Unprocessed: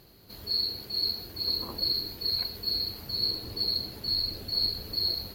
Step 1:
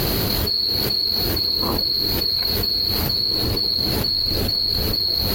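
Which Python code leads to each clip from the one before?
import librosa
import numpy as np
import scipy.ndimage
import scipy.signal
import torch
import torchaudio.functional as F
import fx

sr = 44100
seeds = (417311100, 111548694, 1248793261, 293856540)

y = fx.env_flatten(x, sr, amount_pct=100)
y = y * 10.0 ** (4.0 / 20.0)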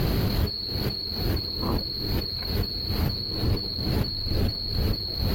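y = fx.bass_treble(x, sr, bass_db=7, treble_db=-9)
y = y * 10.0 ** (-6.0 / 20.0)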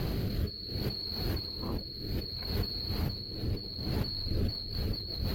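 y = fx.rotary_switch(x, sr, hz=0.65, then_hz=6.3, switch_at_s=4.03)
y = y * 10.0 ** (-5.5 / 20.0)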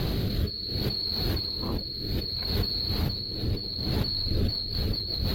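y = fx.peak_eq(x, sr, hz=3700.0, db=9.0, octaves=0.31)
y = y * 10.0 ** (4.5 / 20.0)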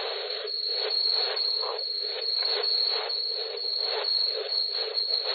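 y = fx.brickwall_bandpass(x, sr, low_hz=400.0, high_hz=4400.0)
y = y * 10.0 ** (6.0 / 20.0)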